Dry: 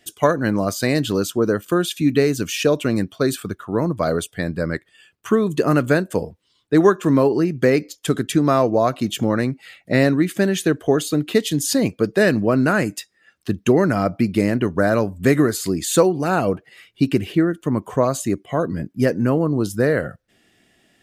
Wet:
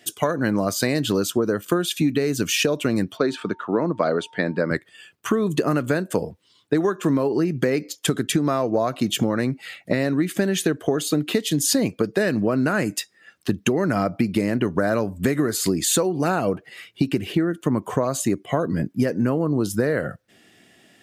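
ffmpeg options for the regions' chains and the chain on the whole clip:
ffmpeg -i in.wav -filter_complex "[0:a]asettb=1/sr,asplit=3[link_01][link_02][link_03];[link_01]atrim=end=3.174[link_04];[link_02]atrim=start=3.17:end=4.71,asetpts=PTS-STARTPTS,afade=type=in:duration=0.004:curve=qsin,afade=type=out:start_time=1.536:duration=0.004:curve=qsin,highpass=210,lowpass=3700,aeval=exprs='val(0)+0.00224*sin(2*PI*910*n/s)':channel_layout=same[link_05];[link_03]atrim=start=4.706[link_06];[link_04][link_05]acrossfade=duration=0.004:curve1=hsin:curve2=qsin[link_07];[link_07][link_06]acrossfade=duration=0.004:curve1=qsin:curve2=hsin,highpass=100,alimiter=limit=-8.5dB:level=0:latency=1:release=372,acompressor=threshold=-22dB:ratio=6,volume=5dB" out.wav

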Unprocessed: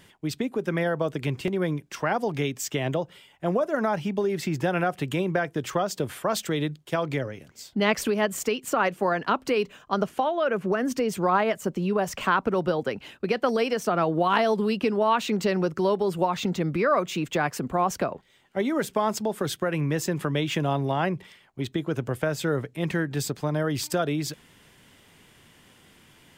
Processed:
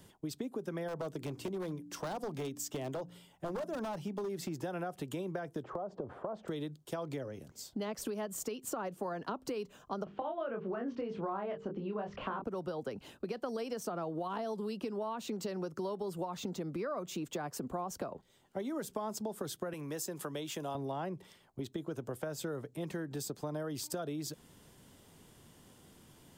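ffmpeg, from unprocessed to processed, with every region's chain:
ffmpeg -i in.wav -filter_complex "[0:a]asettb=1/sr,asplit=3[link_01][link_02][link_03];[link_01]atrim=end=0.884[link_04];[link_02]atrim=start=0.88:end=4.49,asetpts=PTS-STARTPTS,afade=type=in:duration=0.004:curve=qsin,afade=type=out:start_time=3.606:duration=0.004:curve=qsin,bandreject=frequency=58.5:width_type=h:width=4,bandreject=frequency=117:width_type=h:width=4,bandreject=frequency=175.5:width_type=h:width=4,bandreject=frequency=234:width_type=h:width=4,bandreject=frequency=292.5:width_type=h:width=4,aeval=exprs='0.0944*(abs(mod(val(0)/0.0944+3,4)-2)-1)':channel_layout=same[link_05];[link_03]atrim=start=4.486[link_06];[link_04][link_05]acrossfade=duration=0.004:curve1=hsin:curve2=qsin[link_07];[link_07][link_06]acrossfade=duration=0.004:curve1=qsin:curve2=hsin,asettb=1/sr,asplit=3[link_08][link_09][link_10];[link_08]atrim=end=5.634[link_11];[link_09]atrim=start=5.63:end=6.48,asetpts=PTS-STARTPTS,afade=type=in:duration=0.004:curve=qsin,afade=type=out:start_time=0.846:duration=0.004:curve=qsin,lowpass=1200,equalizer=frequency=650:width=0.53:gain=10,acompressor=threshold=-26dB:ratio=6:attack=3.2:release=140:knee=1:detection=peak[link_12];[link_10]atrim=start=6.476[link_13];[link_11][link_12]acrossfade=duration=0.004:curve1=hsin:curve2=qsin[link_14];[link_14][link_13]acrossfade=duration=0.004:curve1=qsin:curve2=hsin,asettb=1/sr,asplit=3[link_15][link_16][link_17];[link_15]atrim=end=10.044[link_18];[link_16]atrim=start=10.04:end=12.44,asetpts=PTS-STARTPTS,afade=type=in:duration=0.004:curve=qsin,afade=type=out:start_time=2.396:duration=0.004:curve=qsin,lowpass=frequency=3200:width=0.5412,lowpass=frequency=3200:width=1.3066,bandreject=frequency=50:width_type=h:width=6,bandreject=frequency=100:width_type=h:width=6,bandreject=frequency=150:width_type=h:width=6,bandreject=frequency=200:width_type=h:width=6,bandreject=frequency=250:width_type=h:width=6,bandreject=frequency=300:width_type=h:width=6,bandreject=frequency=350:width_type=h:width=6,bandreject=frequency=400:width_type=h:width=6,bandreject=frequency=450:width_type=h:width=6,asplit=2[link_19][link_20];[link_20]adelay=25,volume=-4dB[link_21];[link_19][link_21]amix=inputs=2:normalize=0,atrim=end_sample=105840[link_22];[link_17]atrim=start=12.436[link_23];[link_18][link_22]acrossfade=duration=0.004:curve1=hsin:curve2=qsin[link_24];[link_24][link_23]acrossfade=duration=0.004:curve1=qsin:curve2=hsin,asettb=1/sr,asplit=3[link_25][link_26][link_27];[link_25]atrim=end=19.734[link_28];[link_26]atrim=start=19.73:end=20.75,asetpts=PTS-STARTPTS,afade=type=in:duration=0.004:curve=qsin,afade=type=out:start_time=1.016:duration=0.004:curve=qsin,highpass=frequency=630:poles=1,equalizer=frequency=12000:width_type=o:width=1.9:gain=5.5[link_29];[link_27]atrim=start=20.746[link_30];[link_28][link_29]acrossfade=duration=0.004:curve1=hsin:curve2=qsin[link_31];[link_31][link_30]acrossfade=duration=0.004:curve1=qsin:curve2=hsin,acrossover=split=220|860[link_32][link_33][link_34];[link_32]acompressor=threshold=-41dB:ratio=4[link_35];[link_33]acompressor=threshold=-29dB:ratio=4[link_36];[link_34]acompressor=threshold=-29dB:ratio=4[link_37];[link_35][link_36][link_37]amix=inputs=3:normalize=0,equalizer=frequency=2200:width=0.92:gain=-12,acompressor=threshold=-38dB:ratio=2,volume=-1.5dB" out.wav

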